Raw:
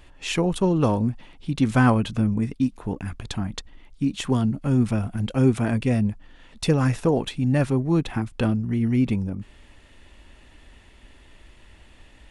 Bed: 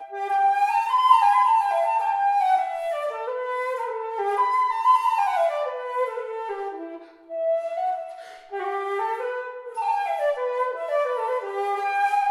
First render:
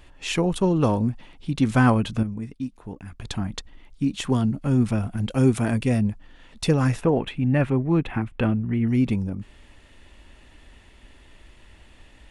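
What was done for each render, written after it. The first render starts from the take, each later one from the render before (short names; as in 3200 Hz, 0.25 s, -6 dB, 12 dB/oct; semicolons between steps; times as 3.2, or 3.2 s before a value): 2.23–3.2 gain -8 dB; 5.3–5.97 high shelf 6100 Hz -> 9300 Hz +8.5 dB; 7.01–8.88 resonant high shelf 3600 Hz -11 dB, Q 1.5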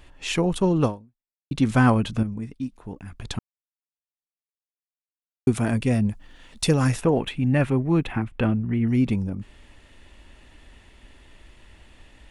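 0.85–1.51 fade out exponential; 3.39–5.47 mute; 6.09–8.13 high shelf 4600 Hz +8.5 dB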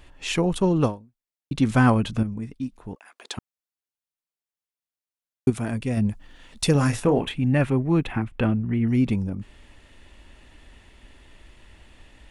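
2.94–3.37 HPF 710 Hz -> 320 Hz 24 dB/oct; 5.5–5.97 gain -4.5 dB; 6.72–7.34 doubler 28 ms -8 dB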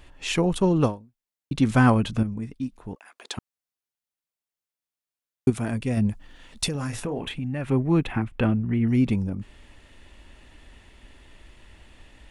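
6.68–7.7 compressor 3:1, threshold -28 dBFS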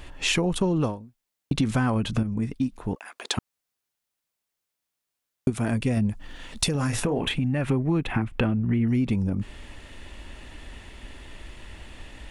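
in parallel at +3 dB: limiter -15 dBFS, peak gain reduction 7.5 dB; on the sum: compressor 5:1, threshold -21 dBFS, peak gain reduction 11.5 dB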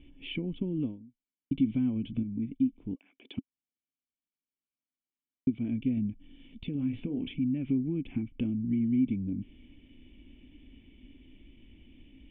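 vocal tract filter i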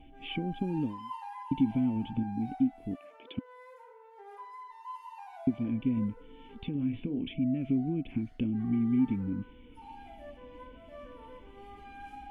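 add bed -25 dB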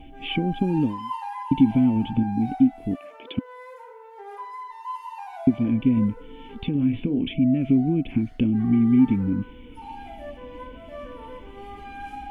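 gain +9.5 dB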